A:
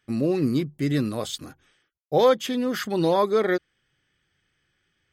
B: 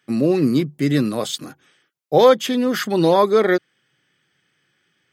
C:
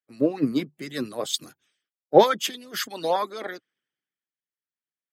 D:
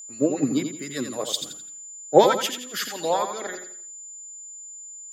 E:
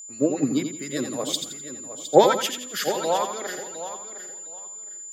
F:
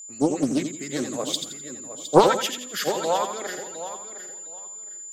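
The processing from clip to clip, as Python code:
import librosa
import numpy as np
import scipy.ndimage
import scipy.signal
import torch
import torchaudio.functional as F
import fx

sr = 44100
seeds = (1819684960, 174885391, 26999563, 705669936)

y1 = scipy.signal.sosfilt(scipy.signal.butter(4, 130.0, 'highpass', fs=sr, output='sos'), x)
y1 = y1 * librosa.db_to_amplitude(6.0)
y2 = fx.hpss(y1, sr, part='harmonic', gain_db=-18)
y2 = fx.band_widen(y2, sr, depth_pct=70)
y2 = y2 * librosa.db_to_amplitude(-3.0)
y3 = fx.echo_feedback(y2, sr, ms=85, feedback_pct=35, wet_db=-7.5)
y3 = y3 + 10.0 ** (-38.0 / 20.0) * np.sin(2.0 * np.pi * 7100.0 * np.arange(len(y3)) / sr)
y4 = fx.echo_feedback(y3, sr, ms=711, feedback_pct=21, wet_db=-12.0)
y5 = fx.doppler_dist(y4, sr, depth_ms=0.42)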